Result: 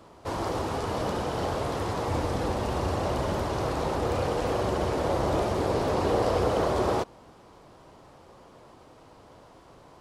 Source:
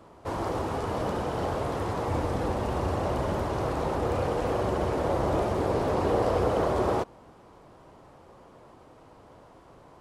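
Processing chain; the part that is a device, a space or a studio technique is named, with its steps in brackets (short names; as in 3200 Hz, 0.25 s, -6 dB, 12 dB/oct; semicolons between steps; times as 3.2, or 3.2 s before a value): presence and air boost (bell 4600 Hz +5.5 dB 1.6 oct; high shelf 10000 Hz +4 dB)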